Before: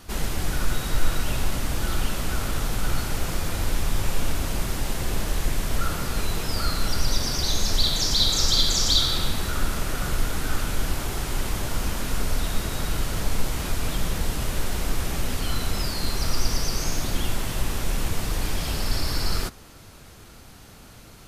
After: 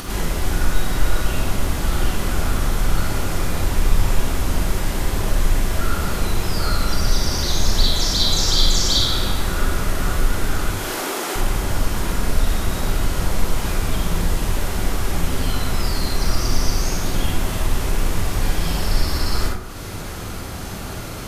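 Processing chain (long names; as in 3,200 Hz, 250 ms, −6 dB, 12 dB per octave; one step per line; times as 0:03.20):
0:10.71–0:11.36: high-pass filter 280 Hz 24 dB per octave
upward compression, threshold −22 dBFS
convolution reverb RT60 0.75 s, pre-delay 32 ms, DRR −2.5 dB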